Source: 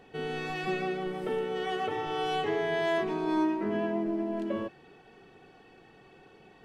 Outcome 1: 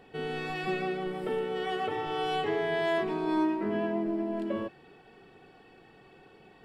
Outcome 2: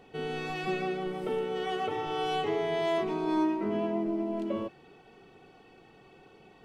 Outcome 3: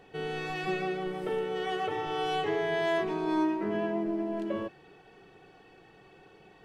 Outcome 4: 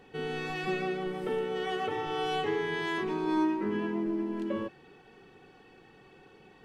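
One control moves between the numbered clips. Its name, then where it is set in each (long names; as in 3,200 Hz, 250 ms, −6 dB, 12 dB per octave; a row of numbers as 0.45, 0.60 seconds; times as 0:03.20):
notch filter, centre frequency: 6,200, 1,700, 240, 660 Hertz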